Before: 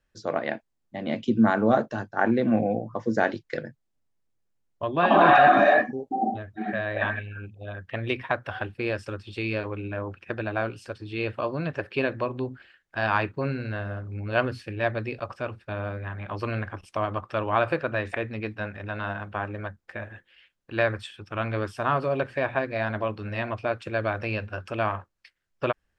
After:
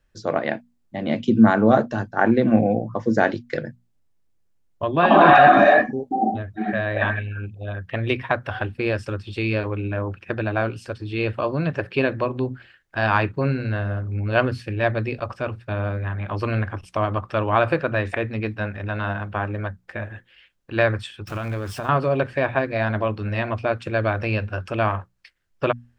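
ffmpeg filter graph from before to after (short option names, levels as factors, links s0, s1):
-filter_complex "[0:a]asettb=1/sr,asplit=3[s0][s1][s2];[s0]atrim=end=21.274[s3];[s1]atrim=start=21.27:end=21.89,asetpts=PTS-STARTPTS,afade=t=in:d=0.004:c=qsin,afade=t=out:st=0.616:d=0.004:c=qsin,aeval=exprs='val(0)+0.5*0.0106*sgn(val(0))':c=same,acompressor=threshold=0.0316:ratio=5:attack=3.2:release=140:knee=1:detection=peak[s4];[s2]atrim=start=21.886[s5];[s3][s4]acrossfade=d=0.004:c1=hsin:c2=qsin[s6];[s6][s5]acrossfade=d=0.004:c1=qsin:c2=hsin,lowshelf=f=190:g=6,bandreject=f=60:t=h:w=6,bandreject=f=120:t=h:w=6,bandreject=f=180:t=h:w=6,bandreject=f=240:t=h:w=6,volume=1.58"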